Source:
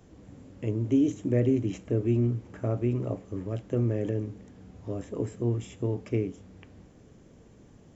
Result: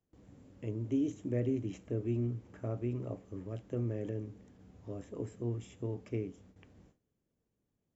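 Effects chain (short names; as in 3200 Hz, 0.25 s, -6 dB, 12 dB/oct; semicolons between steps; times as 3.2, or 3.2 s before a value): gate with hold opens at -42 dBFS; gain -8.5 dB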